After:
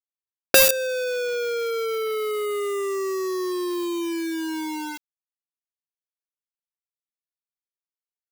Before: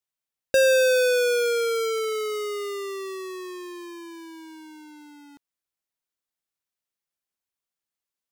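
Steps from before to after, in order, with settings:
drawn EQ curve 140 Hz 0 dB, 250 Hz +2 dB, 380 Hz +9 dB, 1,200 Hz −16 dB, 2,300 Hz −7 dB, 3,900 Hz −21 dB, 5,500 Hz −27 dB, 10,000 Hz −18 dB, 16,000 Hz +1 dB
log-companded quantiser 2 bits
level −1 dB

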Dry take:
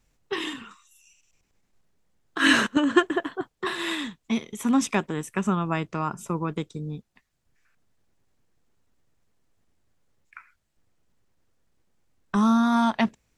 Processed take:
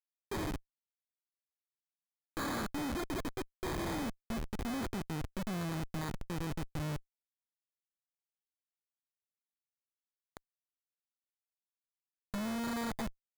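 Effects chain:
sample-rate reduction 2,800 Hz, jitter 0%
comparator with hysteresis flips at −33 dBFS
level −7.5 dB

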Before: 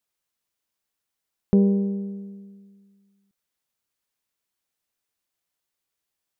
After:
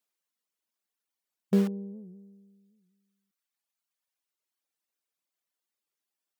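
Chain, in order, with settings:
reverb reduction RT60 1.9 s
in parallel at −11 dB: wrap-around overflow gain 23.5 dB
on the sum: linear-phase brick-wall high-pass 160 Hz
wow of a warped record 78 rpm, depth 160 cents
level −4.5 dB

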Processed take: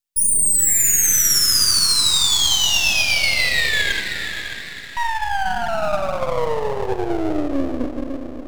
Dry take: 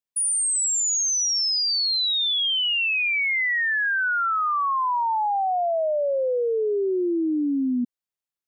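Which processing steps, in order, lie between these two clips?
0:03.92–0:04.97: Butterworth high-pass 1,900 Hz 48 dB per octave
feedback delay with all-pass diffusion 543 ms, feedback 41%, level −8 dB
on a send at −4.5 dB: convolution reverb RT60 1.2 s, pre-delay 6 ms
on the sum: half-wave rectification
high-shelf EQ 2,500 Hz +8.5 dB
level +3 dB

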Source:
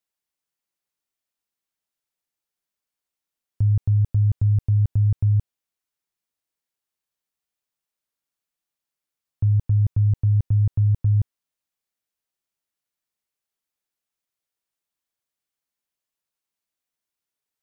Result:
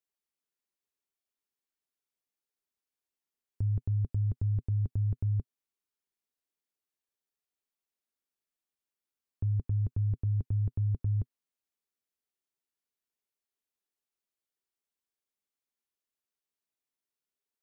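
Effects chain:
thirty-one-band graphic EQ 125 Hz −12 dB, 250 Hz +5 dB, 400 Hz +7 dB
level −7 dB

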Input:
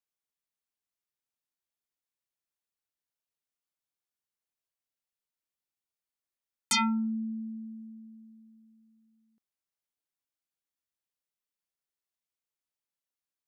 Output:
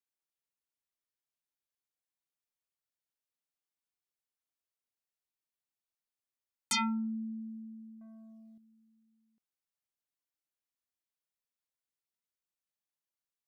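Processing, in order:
0:08.01–0:08.58: leveller curve on the samples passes 2
level −4.5 dB

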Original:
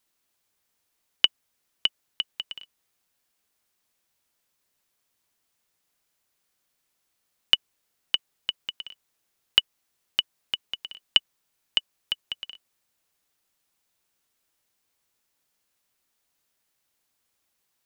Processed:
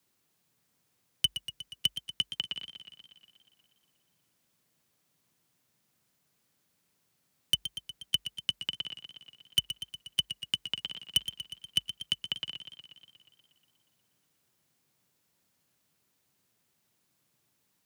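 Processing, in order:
parametric band 100 Hz +12.5 dB 2.8 octaves
frequency shifter +48 Hz
gain into a clipping stage and back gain 17.5 dB
feedback echo with a swinging delay time 120 ms, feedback 69%, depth 65 cents, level −11 dB

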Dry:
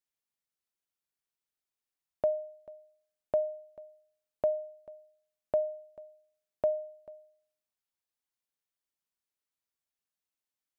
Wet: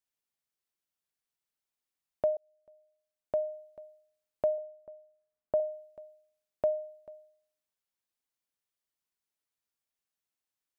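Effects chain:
0:02.37–0:03.62: fade in
0:04.58–0:05.60: low-pass filter 1,500 Hz 12 dB per octave

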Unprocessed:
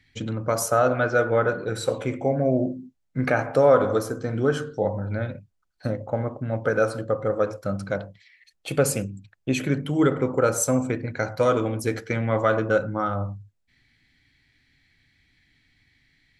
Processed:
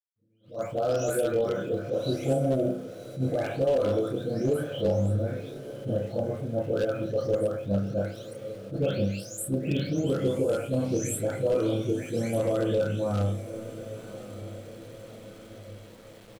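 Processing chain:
every frequency bin delayed by itself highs late, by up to 525 ms
high shelf with overshoot 3,900 Hz −6.5 dB, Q 1.5
brickwall limiter −18 dBFS, peak gain reduction 10.5 dB
mains-hum notches 60/120/180 Hz
double-tracking delay 30 ms −3 dB
wave folding −17.5 dBFS
reversed playback
upward compression, threshold −44 dBFS
reversed playback
flat-topped bell 1,400 Hz −13 dB
feedback delay with all-pass diffusion 1,133 ms, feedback 56%, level −13.5 dB
centre clipping without the shift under −50 dBFS
level that may rise only so fast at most 200 dB per second

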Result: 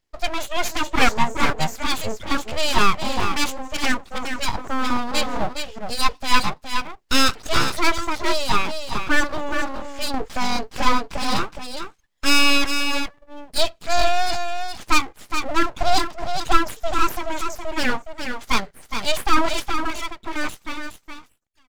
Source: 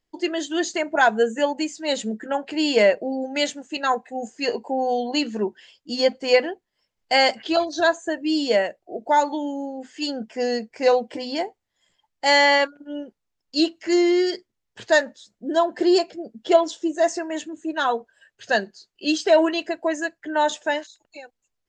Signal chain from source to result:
fade-out on the ending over 2.53 s
0:10.14–0:11.37: upward compression, threshold −19 dBFS
single-tap delay 416 ms −7 dB
full-wave rectification
level +3.5 dB

